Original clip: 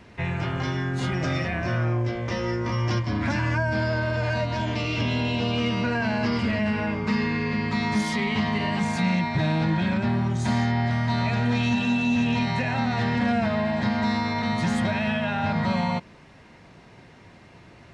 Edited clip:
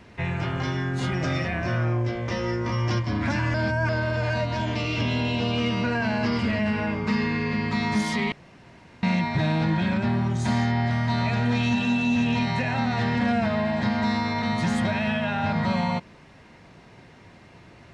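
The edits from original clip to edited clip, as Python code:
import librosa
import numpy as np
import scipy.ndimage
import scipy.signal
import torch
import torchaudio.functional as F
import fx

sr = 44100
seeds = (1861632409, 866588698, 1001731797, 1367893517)

y = fx.edit(x, sr, fx.reverse_span(start_s=3.54, length_s=0.35),
    fx.room_tone_fill(start_s=8.32, length_s=0.71), tone=tone)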